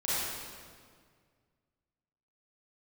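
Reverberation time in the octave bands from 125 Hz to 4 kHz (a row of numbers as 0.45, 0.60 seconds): 2.6, 2.2, 2.0, 1.8, 1.6, 1.5 seconds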